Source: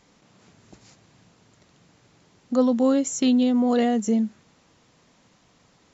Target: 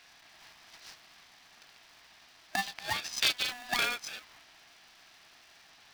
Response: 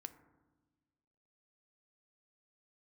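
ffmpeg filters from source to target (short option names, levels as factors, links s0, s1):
-af "afftfilt=real='re*between(b*sr/4096,1100,5700)':imag='im*between(b*sr/4096,1100,5700)':win_size=4096:overlap=0.75,acontrast=85,aeval=exprs='val(0)*sgn(sin(2*PI*490*n/s))':c=same"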